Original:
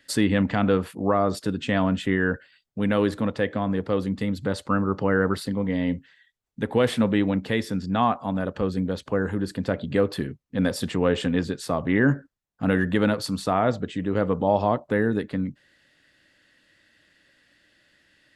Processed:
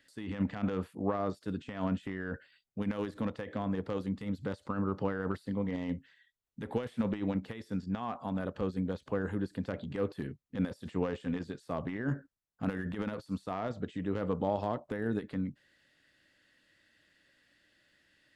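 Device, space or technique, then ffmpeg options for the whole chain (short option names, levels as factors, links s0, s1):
de-esser from a sidechain: -filter_complex "[0:a]asplit=2[s0][s1];[s1]highpass=6200,apad=whole_len=809484[s2];[s0][s2]sidechaincompress=threshold=0.00126:ratio=12:attack=4.4:release=29,volume=0.447"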